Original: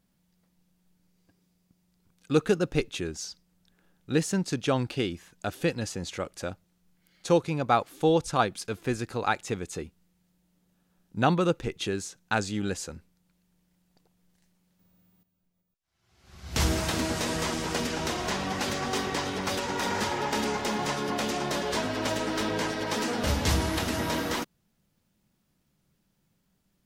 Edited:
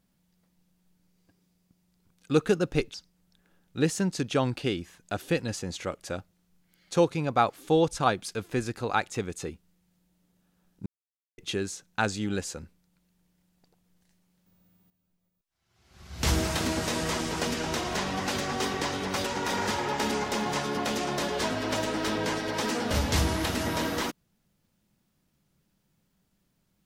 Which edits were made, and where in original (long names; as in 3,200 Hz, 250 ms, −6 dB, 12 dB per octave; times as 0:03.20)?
0:02.94–0:03.27: remove
0:11.19–0:11.71: silence